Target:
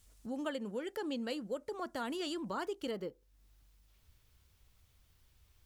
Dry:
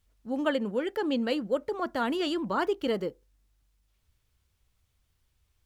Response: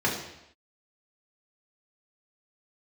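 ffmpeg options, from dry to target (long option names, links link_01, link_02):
-af "asetnsamples=nb_out_samples=441:pad=0,asendcmd='2.91 equalizer g -4.5',equalizer=frequency=8400:width=0.86:gain=6.5,acompressor=threshold=-53dB:ratio=2,bass=frequency=250:gain=0,treble=frequency=4000:gain=4,volume=4.5dB"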